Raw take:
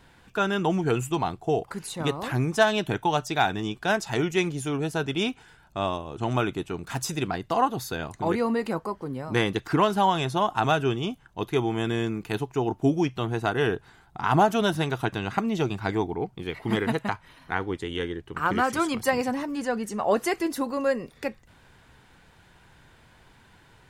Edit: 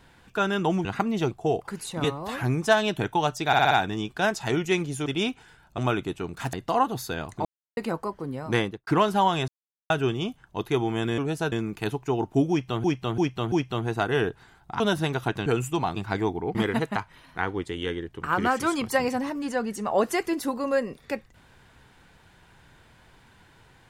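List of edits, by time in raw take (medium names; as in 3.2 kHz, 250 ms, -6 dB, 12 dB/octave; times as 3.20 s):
0.85–1.34 s: swap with 15.23–15.69 s
2.07–2.33 s: stretch 1.5×
3.37 s: stutter 0.06 s, 5 plays
4.72–5.06 s: move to 12.00 s
5.78–6.28 s: delete
7.03–7.35 s: delete
8.27–8.59 s: mute
9.37–9.69 s: studio fade out
10.30–10.72 s: mute
12.98–13.32 s: loop, 4 plays
14.26–14.57 s: delete
16.29–16.68 s: delete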